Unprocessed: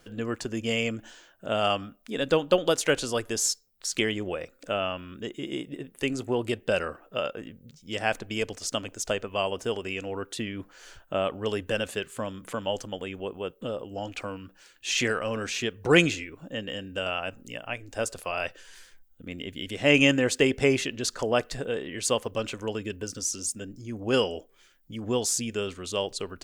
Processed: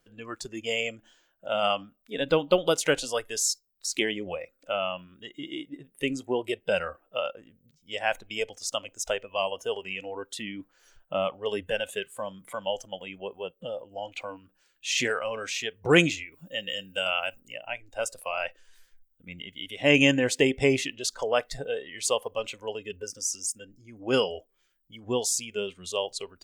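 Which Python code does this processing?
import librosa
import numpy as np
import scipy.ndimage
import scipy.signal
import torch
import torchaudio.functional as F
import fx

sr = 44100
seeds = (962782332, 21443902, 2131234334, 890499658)

y = fx.high_shelf(x, sr, hz=3000.0, db=10.5, at=(16.32, 17.4))
y = fx.noise_reduce_blind(y, sr, reduce_db=13)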